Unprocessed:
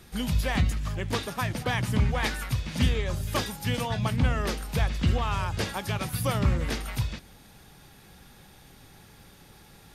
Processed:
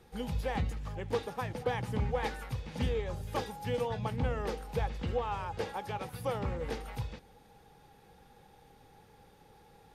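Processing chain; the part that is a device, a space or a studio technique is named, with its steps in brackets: 5.02–6.64 s: tone controls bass -4 dB, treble -2 dB; inside a helmet (treble shelf 3.6 kHz -6.5 dB; small resonant body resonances 480/810 Hz, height 13 dB, ringing for 40 ms); trim -9 dB

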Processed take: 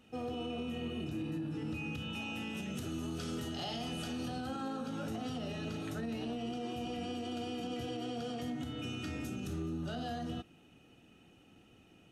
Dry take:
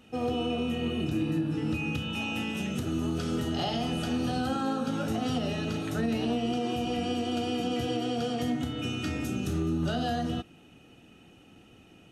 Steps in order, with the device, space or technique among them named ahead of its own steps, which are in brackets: 2.77–4.28 s: treble shelf 2.2 kHz +6 dB; soft clipper into limiter (saturation -18.5 dBFS, distortion -27 dB; peak limiter -25 dBFS, peak gain reduction 4.5 dB); trim -6.5 dB

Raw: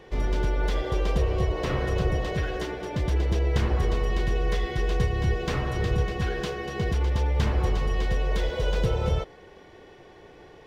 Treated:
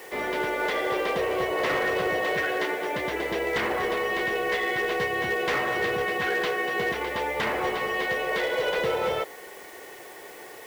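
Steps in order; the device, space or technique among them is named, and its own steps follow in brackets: drive-through speaker (band-pass 430–3300 Hz; peaking EQ 2 kHz +7 dB 0.34 oct; hard clipper -27.5 dBFS, distortion -18 dB; white noise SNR 23 dB); trim +7 dB

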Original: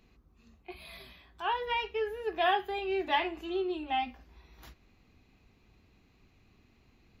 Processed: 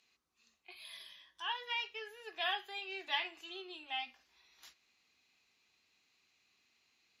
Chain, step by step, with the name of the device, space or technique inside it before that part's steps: piezo pickup straight into a mixer (low-pass 6.8 kHz 12 dB/octave; differentiator); 0.84–1.52 s: rippled EQ curve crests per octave 1.2, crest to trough 10 dB; trim +6.5 dB

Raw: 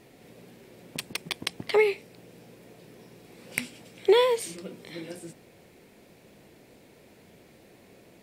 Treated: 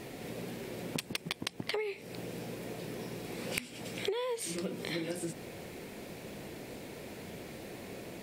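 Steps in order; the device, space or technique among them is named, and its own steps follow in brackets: serial compression, leveller first (compression 2.5:1, threshold -29 dBFS, peak gain reduction 10 dB; compression 8:1, threshold -42 dBFS, peak gain reduction 18 dB); trim +9.5 dB

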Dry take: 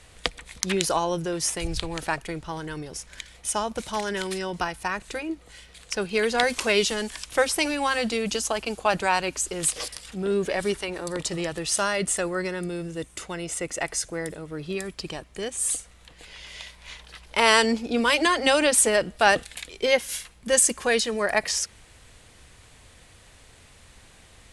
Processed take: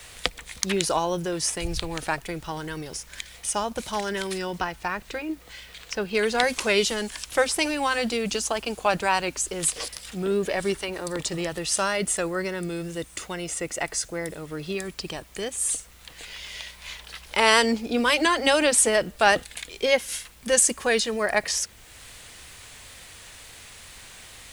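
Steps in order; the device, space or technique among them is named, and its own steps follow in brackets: 4.58–6.15 s: distance through air 99 m; noise-reduction cassette on a plain deck (tape noise reduction on one side only encoder only; wow and flutter; white noise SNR 30 dB)

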